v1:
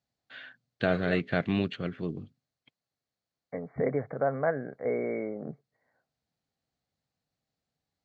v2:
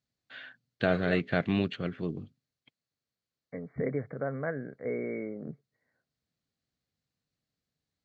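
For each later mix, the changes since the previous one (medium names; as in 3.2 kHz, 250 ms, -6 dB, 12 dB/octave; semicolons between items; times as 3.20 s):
second voice: add peaking EQ 790 Hz -11.5 dB 1.1 oct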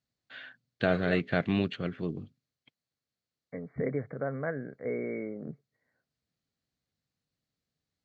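no change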